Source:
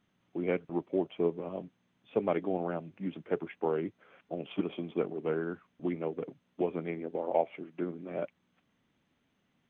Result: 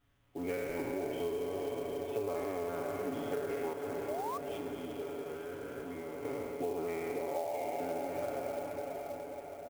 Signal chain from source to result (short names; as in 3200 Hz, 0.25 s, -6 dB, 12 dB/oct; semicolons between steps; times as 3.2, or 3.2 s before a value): spectral trails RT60 2.79 s; resonant low shelf 110 Hz +13 dB, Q 3; comb 7.1 ms, depth 92%; 3.73–6.25 level quantiser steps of 19 dB; diffused feedback echo 0.506 s, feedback 63%, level -9 dB; 4.08–4.38 painted sound rise 560–1200 Hz -30 dBFS; compressor 6:1, threshold -28 dBFS, peak gain reduction 11 dB; clock jitter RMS 0.027 ms; gain -5 dB